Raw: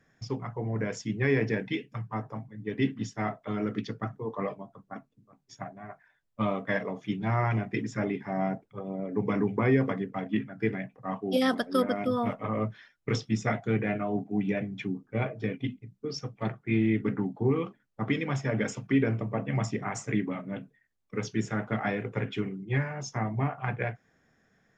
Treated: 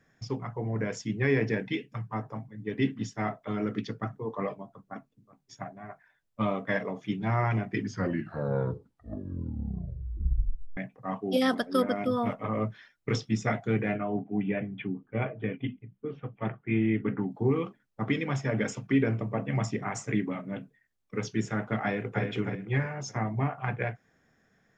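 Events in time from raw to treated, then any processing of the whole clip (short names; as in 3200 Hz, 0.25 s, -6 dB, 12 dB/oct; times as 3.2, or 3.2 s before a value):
7.66 tape stop 3.11 s
13.96–17.31 elliptic low-pass 3200 Hz
21.83–22.24 echo throw 0.31 s, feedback 35%, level -5 dB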